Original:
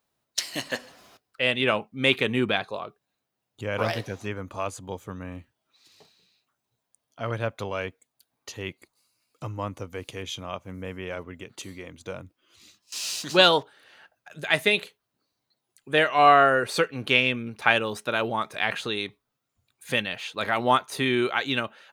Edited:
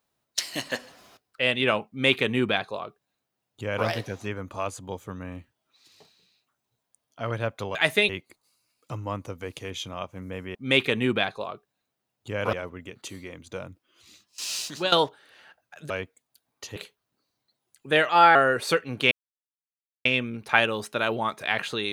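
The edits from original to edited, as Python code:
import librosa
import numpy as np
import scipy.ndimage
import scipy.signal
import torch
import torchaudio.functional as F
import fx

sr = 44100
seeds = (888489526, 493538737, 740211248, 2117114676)

y = fx.edit(x, sr, fx.duplicate(start_s=1.88, length_s=1.98, to_s=11.07),
    fx.swap(start_s=7.75, length_s=0.86, other_s=14.44, other_length_s=0.34),
    fx.fade_out_to(start_s=13.14, length_s=0.32, floor_db=-15.0),
    fx.speed_span(start_s=16.11, length_s=0.31, speed=1.18),
    fx.insert_silence(at_s=17.18, length_s=0.94), tone=tone)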